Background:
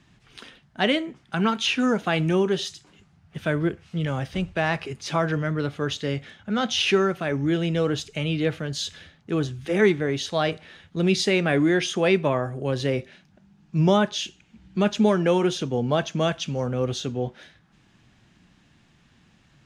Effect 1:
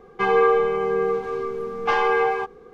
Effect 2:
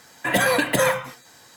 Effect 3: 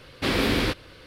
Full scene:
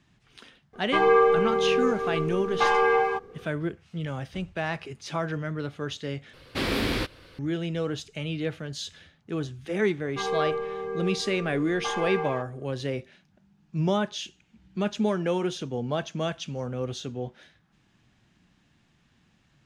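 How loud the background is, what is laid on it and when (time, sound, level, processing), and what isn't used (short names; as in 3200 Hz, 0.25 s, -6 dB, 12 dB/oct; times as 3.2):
background -6 dB
0.73 add 1 -1.5 dB
6.33 replace with 3 -3.5 dB
9.97 add 1 -10.5 dB
not used: 2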